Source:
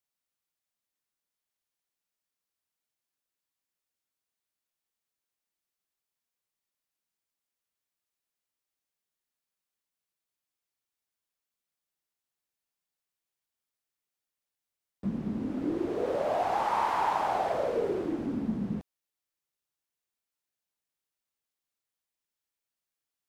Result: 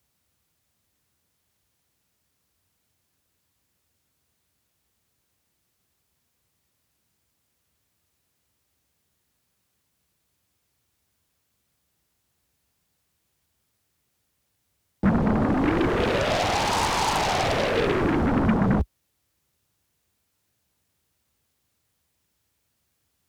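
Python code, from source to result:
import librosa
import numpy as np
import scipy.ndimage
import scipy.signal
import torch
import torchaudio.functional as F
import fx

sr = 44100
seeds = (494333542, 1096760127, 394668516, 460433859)

p1 = scipy.signal.sosfilt(scipy.signal.butter(4, 52.0, 'highpass', fs=sr, output='sos'), x)
p2 = fx.peak_eq(p1, sr, hz=71.0, db=12.5, octaves=2.4)
p3 = fx.fold_sine(p2, sr, drive_db=19, ceiling_db=-15.5)
p4 = p2 + (p3 * 10.0 ** (-10.0 / 20.0))
y = fx.low_shelf(p4, sr, hz=420.0, db=6.0)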